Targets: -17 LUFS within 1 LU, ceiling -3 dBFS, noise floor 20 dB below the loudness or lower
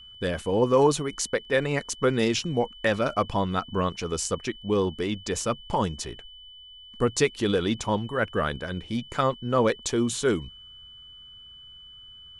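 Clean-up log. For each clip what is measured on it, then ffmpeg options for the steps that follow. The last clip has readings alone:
steady tone 3 kHz; tone level -45 dBFS; loudness -26.5 LUFS; peak level -8.0 dBFS; loudness target -17.0 LUFS
-> -af "bandreject=f=3000:w=30"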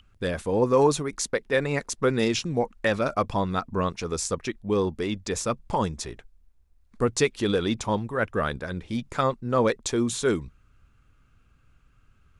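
steady tone not found; loudness -26.5 LUFS; peak level -8.0 dBFS; loudness target -17.0 LUFS
-> -af "volume=2.99,alimiter=limit=0.708:level=0:latency=1"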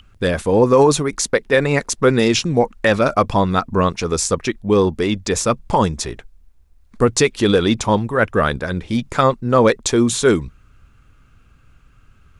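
loudness -17.5 LUFS; peak level -3.0 dBFS; noise floor -52 dBFS

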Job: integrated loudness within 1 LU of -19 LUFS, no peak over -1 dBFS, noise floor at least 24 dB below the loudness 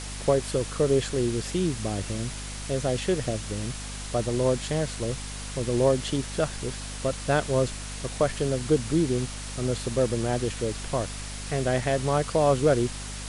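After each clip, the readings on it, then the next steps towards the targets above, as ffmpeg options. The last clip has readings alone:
hum 50 Hz; highest harmonic 250 Hz; hum level -35 dBFS; noise floor -36 dBFS; noise floor target -51 dBFS; loudness -27.0 LUFS; peak level -10.5 dBFS; loudness target -19.0 LUFS
-> -af "bandreject=f=50:t=h:w=6,bandreject=f=100:t=h:w=6,bandreject=f=150:t=h:w=6,bandreject=f=200:t=h:w=6,bandreject=f=250:t=h:w=6"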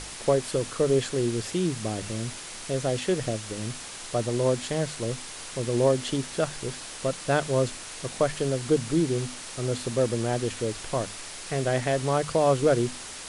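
hum not found; noise floor -40 dBFS; noise floor target -52 dBFS
-> -af "afftdn=nr=12:nf=-40"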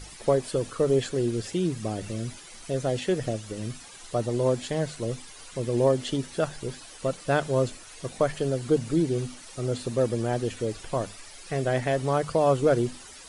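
noise floor -46 dBFS; noise floor target -52 dBFS
-> -af "afftdn=nr=6:nf=-46"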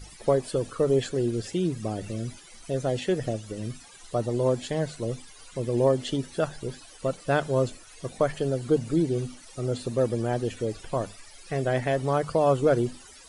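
noise floor -49 dBFS; noise floor target -52 dBFS
-> -af "afftdn=nr=6:nf=-49"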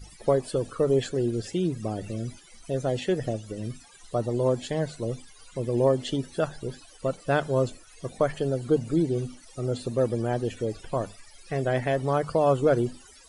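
noise floor -52 dBFS; loudness -27.5 LUFS; peak level -10.5 dBFS; loudness target -19.0 LUFS
-> -af "volume=2.66"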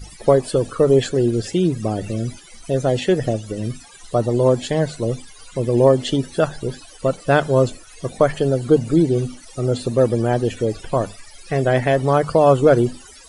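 loudness -19.0 LUFS; peak level -2.0 dBFS; noise floor -43 dBFS

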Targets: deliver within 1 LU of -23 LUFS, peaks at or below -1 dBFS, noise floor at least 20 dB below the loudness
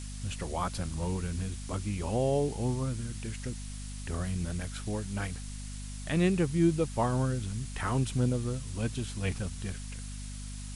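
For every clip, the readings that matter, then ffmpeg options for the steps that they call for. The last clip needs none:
hum 50 Hz; highest harmonic 250 Hz; hum level -38 dBFS; noise floor -40 dBFS; noise floor target -53 dBFS; loudness -33.0 LUFS; peak level -14.0 dBFS; loudness target -23.0 LUFS
-> -af "bandreject=f=50:t=h:w=4,bandreject=f=100:t=h:w=4,bandreject=f=150:t=h:w=4,bandreject=f=200:t=h:w=4,bandreject=f=250:t=h:w=4"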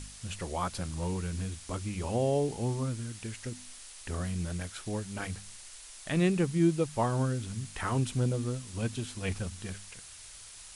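hum not found; noise floor -49 dBFS; noise floor target -53 dBFS
-> -af "afftdn=nr=6:nf=-49"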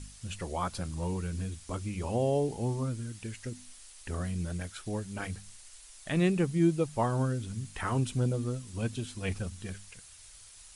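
noise floor -53 dBFS; loudness -33.0 LUFS; peak level -15.0 dBFS; loudness target -23.0 LUFS
-> -af "volume=3.16"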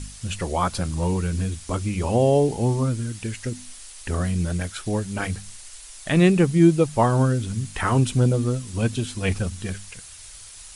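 loudness -23.0 LUFS; peak level -5.0 dBFS; noise floor -43 dBFS

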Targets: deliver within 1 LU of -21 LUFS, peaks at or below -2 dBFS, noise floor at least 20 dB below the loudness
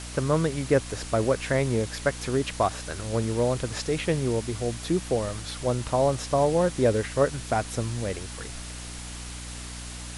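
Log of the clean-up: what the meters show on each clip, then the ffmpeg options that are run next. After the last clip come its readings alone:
hum 60 Hz; highest harmonic 300 Hz; hum level -39 dBFS; noise floor -38 dBFS; noise floor target -47 dBFS; loudness -26.5 LUFS; peak level -9.0 dBFS; loudness target -21.0 LUFS
-> -af "bandreject=f=60:t=h:w=6,bandreject=f=120:t=h:w=6,bandreject=f=180:t=h:w=6,bandreject=f=240:t=h:w=6,bandreject=f=300:t=h:w=6"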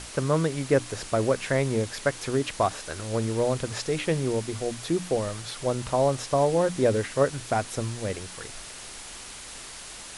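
hum not found; noise floor -42 dBFS; noise floor target -47 dBFS
-> -af "afftdn=nr=6:nf=-42"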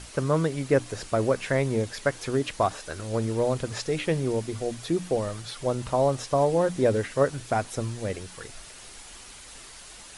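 noise floor -46 dBFS; noise floor target -47 dBFS
-> -af "afftdn=nr=6:nf=-46"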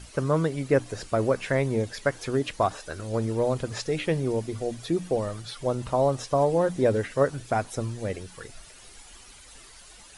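noise floor -49 dBFS; loudness -27.0 LUFS; peak level -9.5 dBFS; loudness target -21.0 LUFS
-> -af "volume=2"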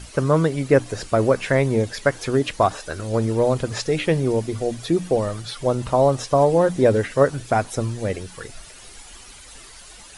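loudness -21.0 LUFS; peak level -3.5 dBFS; noise floor -43 dBFS

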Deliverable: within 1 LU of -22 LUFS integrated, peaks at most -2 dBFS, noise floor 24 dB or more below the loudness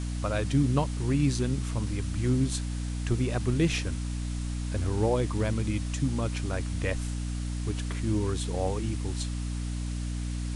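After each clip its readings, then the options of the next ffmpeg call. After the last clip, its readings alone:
hum 60 Hz; highest harmonic 300 Hz; hum level -29 dBFS; noise floor -33 dBFS; noise floor target -54 dBFS; loudness -30.0 LUFS; peak level -13.5 dBFS; loudness target -22.0 LUFS
-> -af "bandreject=f=60:t=h:w=4,bandreject=f=120:t=h:w=4,bandreject=f=180:t=h:w=4,bandreject=f=240:t=h:w=4,bandreject=f=300:t=h:w=4"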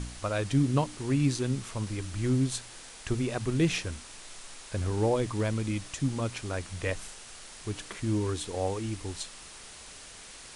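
hum not found; noise floor -48 dBFS; noise floor target -55 dBFS
-> -af "afftdn=nr=7:nf=-48"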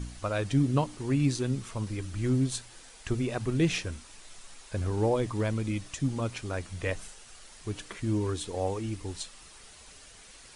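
noise floor -52 dBFS; noise floor target -55 dBFS
-> -af "afftdn=nr=6:nf=-52"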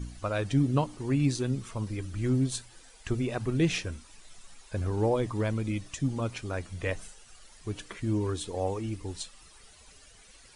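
noise floor -55 dBFS; loudness -31.0 LUFS; peak level -14.5 dBFS; loudness target -22.0 LUFS
-> -af "volume=2.82"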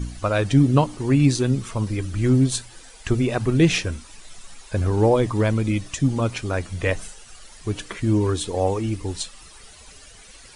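loudness -22.0 LUFS; peak level -5.5 dBFS; noise floor -46 dBFS

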